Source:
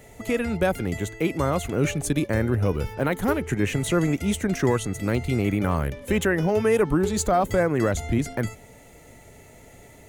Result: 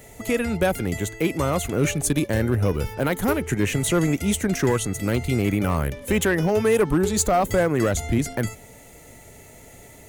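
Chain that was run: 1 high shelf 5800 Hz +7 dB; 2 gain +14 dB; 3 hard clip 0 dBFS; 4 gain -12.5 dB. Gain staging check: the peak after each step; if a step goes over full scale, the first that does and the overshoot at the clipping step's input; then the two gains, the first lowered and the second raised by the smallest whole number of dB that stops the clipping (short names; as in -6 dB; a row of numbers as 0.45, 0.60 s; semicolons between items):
-8.5, +5.5, 0.0, -12.5 dBFS; step 2, 5.5 dB; step 2 +8 dB, step 4 -6.5 dB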